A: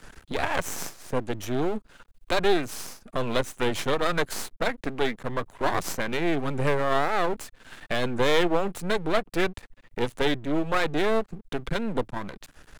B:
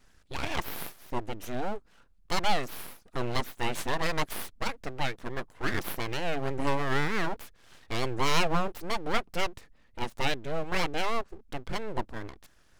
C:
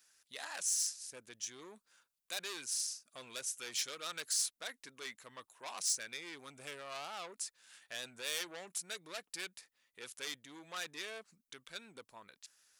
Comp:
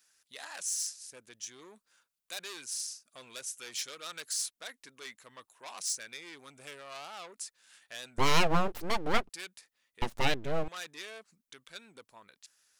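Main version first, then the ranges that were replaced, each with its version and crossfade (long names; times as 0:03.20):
C
0:08.18–0:09.29: punch in from B
0:10.02–0:10.68: punch in from B
not used: A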